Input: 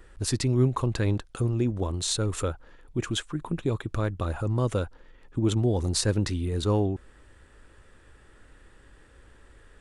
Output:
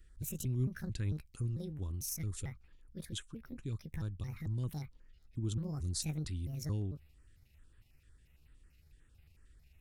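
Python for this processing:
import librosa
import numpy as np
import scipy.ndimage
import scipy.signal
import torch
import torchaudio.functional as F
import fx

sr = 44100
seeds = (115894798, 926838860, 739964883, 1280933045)

y = fx.pitch_trill(x, sr, semitones=7.0, every_ms=223)
y = fx.tone_stack(y, sr, knobs='6-0-2')
y = fx.filter_held_notch(y, sr, hz=11.0, low_hz=890.0, high_hz=6200.0)
y = y * 10.0 ** (5.0 / 20.0)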